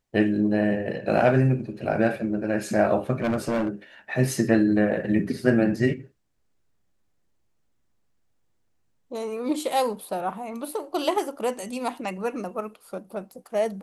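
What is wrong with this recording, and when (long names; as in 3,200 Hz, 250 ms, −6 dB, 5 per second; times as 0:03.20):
0:03.20–0:03.68: clipping −20.5 dBFS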